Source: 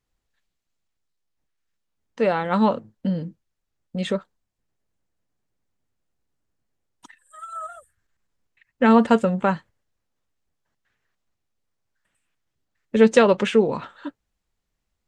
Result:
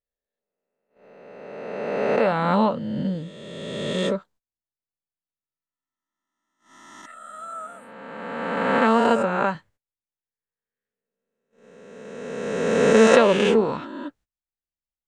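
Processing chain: reverse spectral sustain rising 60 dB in 2.13 s; gate -48 dBFS, range -22 dB; 7.48–9.55 s: bass shelf 190 Hz -9 dB; trim -3.5 dB

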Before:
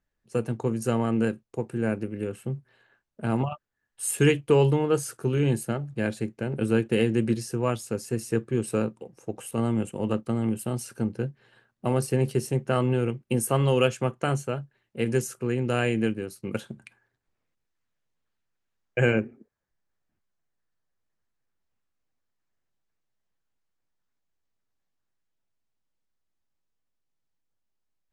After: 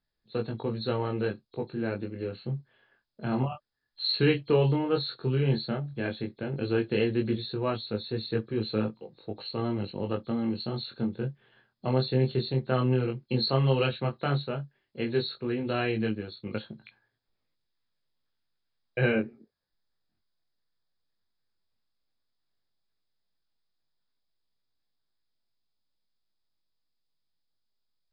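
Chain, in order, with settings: knee-point frequency compression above 3.2 kHz 4:1; chorus 0.12 Hz, delay 19 ms, depth 4.3 ms

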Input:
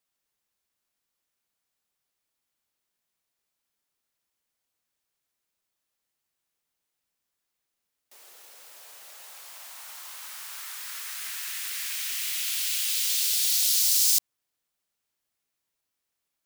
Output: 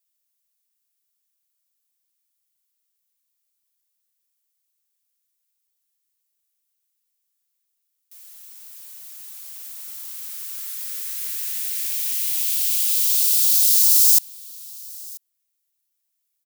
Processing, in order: tilt EQ +5 dB/octave; on a send: delay 987 ms -22.5 dB; on the sum: trim -10.5 dB

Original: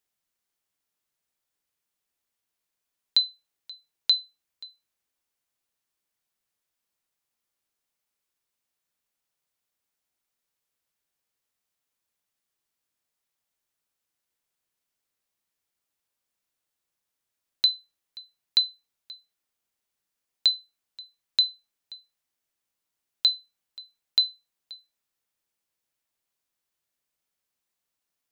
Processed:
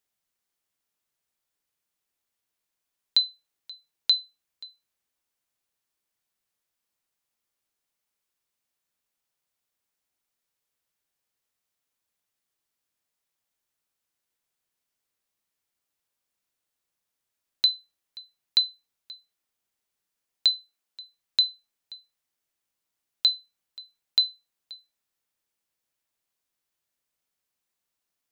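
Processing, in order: 20.56–21.01 s: high-pass 180 Hz

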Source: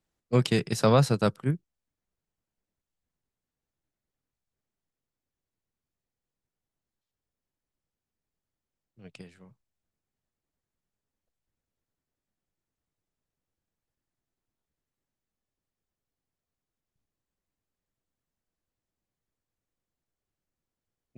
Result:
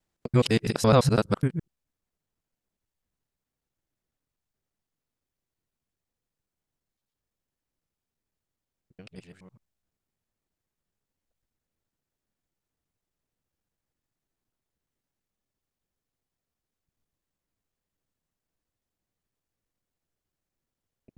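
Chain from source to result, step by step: time reversed locally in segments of 84 ms; trim +1.5 dB

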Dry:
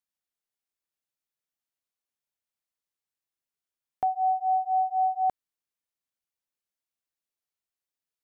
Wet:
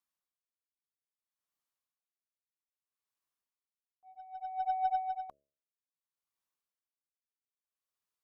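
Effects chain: peaking EQ 1.1 kHz +9 dB 0.4 oct; de-hum 70.54 Hz, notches 9; slow attack 172 ms; compressor with a negative ratio -26 dBFS, ratio -0.5; Chebyshev shaper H 2 -23 dB, 4 -33 dB, 7 -34 dB, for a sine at -19.5 dBFS; logarithmic tremolo 0.62 Hz, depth 22 dB; trim -3 dB

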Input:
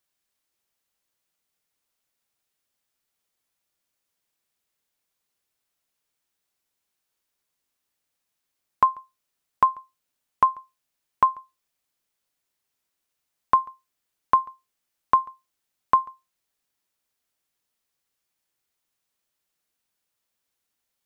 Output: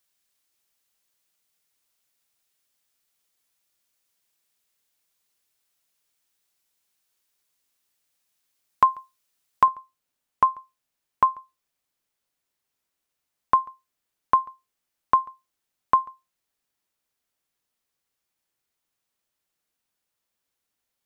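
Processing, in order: treble shelf 2.1 kHz +6 dB, from 9.68 s -2 dB

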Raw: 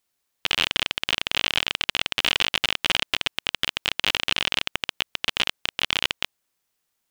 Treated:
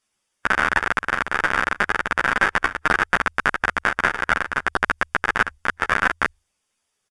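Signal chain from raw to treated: harmonic-percussive split percussive +7 dB; hum notches 50/100/150 Hz; pitch shift -11.5 st; Butterworth band-stop 4.1 kHz, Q 8; three-phase chorus; trim +1.5 dB

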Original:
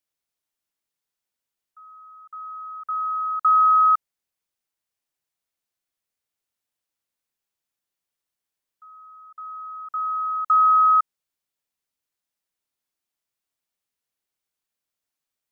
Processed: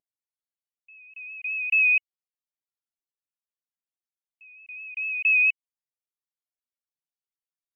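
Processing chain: wow and flutter 41 cents; speed mistake 7.5 ips tape played at 15 ips; loudest bins only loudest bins 32; trim -3.5 dB

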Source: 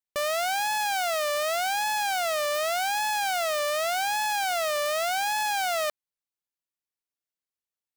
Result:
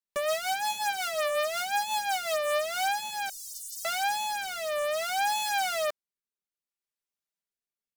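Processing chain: 3.29–3.85 s: inverse Chebyshev band-stop 110–2400 Hz, stop band 50 dB; comb 5 ms, depth 89%; in parallel at -8 dB: integer overflow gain 17 dB; on the sum: rotary cabinet horn 5.5 Hz, later 0.6 Hz, at 2.25 s; trim -5.5 dB

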